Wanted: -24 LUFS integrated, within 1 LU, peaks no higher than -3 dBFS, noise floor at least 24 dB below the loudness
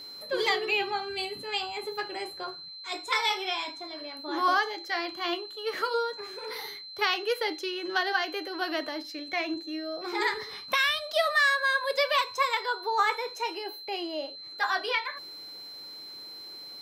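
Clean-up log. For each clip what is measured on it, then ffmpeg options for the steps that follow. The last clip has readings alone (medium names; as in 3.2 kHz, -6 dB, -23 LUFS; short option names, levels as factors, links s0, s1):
steady tone 4.1 kHz; tone level -41 dBFS; loudness -29.0 LUFS; peak level -14.0 dBFS; loudness target -24.0 LUFS
-> -af "bandreject=f=4100:w=30"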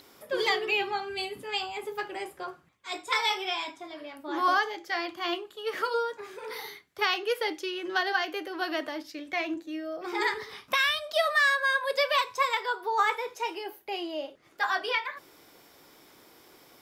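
steady tone not found; loudness -29.0 LUFS; peak level -14.0 dBFS; loudness target -24.0 LUFS
-> -af "volume=1.78"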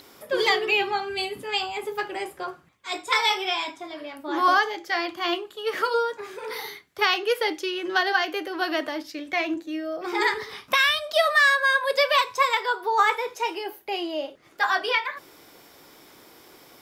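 loudness -24.0 LUFS; peak level -9.0 dBFS; noise floor -52 dBFS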